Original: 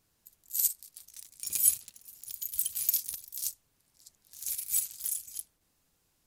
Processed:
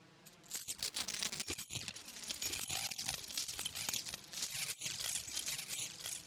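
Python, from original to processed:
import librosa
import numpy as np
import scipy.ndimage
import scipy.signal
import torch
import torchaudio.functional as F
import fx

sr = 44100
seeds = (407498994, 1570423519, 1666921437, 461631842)

p1 = fx.comb(x, sr, ms=6.4, depth=0.88, at=(4.46, 4.9), fade=0.02)
p2 = fx.env_flanger(p1, sr, rest_ms=6.2, full_db=-23.5)
p3 = fx.bandpass_edges(p2, sr, low_hz=110.0, high_hz=3500.0)
p4 = p3 + fx.echo_single(p3, sr, ms=999, db=-7.5, dry=0)
p5 = fx.leveller(p4, sr, passes=3, at=(0.78, 1.47))
p6 = fx.over_compress(p5, sr, threshold_db=-56.0, ratio=-0.5)
p7 = fx.peak_eq(p6, sr, hz=760.0, db=13.5, octaves=0.24, at=(2.64, 3.12))
y = p7 * 10.0 ** (15.5 / 20.0)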